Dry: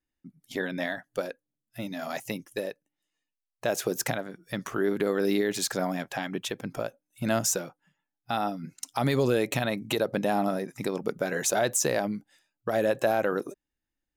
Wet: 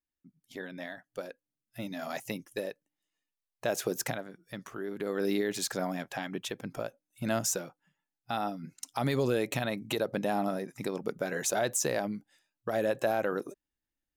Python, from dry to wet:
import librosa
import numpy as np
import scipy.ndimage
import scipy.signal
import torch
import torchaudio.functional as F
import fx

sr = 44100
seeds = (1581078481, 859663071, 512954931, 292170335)

y = fx.gain(x, sr, db=fx.line((0.96, -10.0), (1.81, -3.0), (3.91, -3.0), (4.88, -11.5), (5.22, -4.0)))